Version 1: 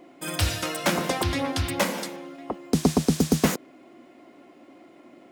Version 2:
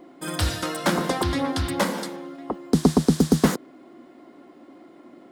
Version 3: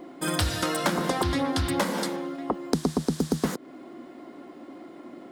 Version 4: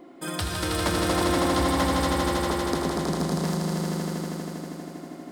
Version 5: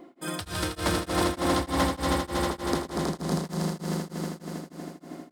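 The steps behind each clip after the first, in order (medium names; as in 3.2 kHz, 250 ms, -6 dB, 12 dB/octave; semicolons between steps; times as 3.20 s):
fifteen-band graphic EQ 100 Hz -6 dB, 630 Hz -4 dB, 2.5 kHz -9 dB, 6.3 kHz -5 dB, 16 kHz -11 dB; trim +4 dB
compression 6:1, threshold -26 dBFS, peak gain reduction 13.5 dB; trim +4 dB
echo with a slow build-up 80 ms, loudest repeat 5, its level -4 dB; trim -4.5 dB
tremolo of two beating tones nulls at 3.3 Hz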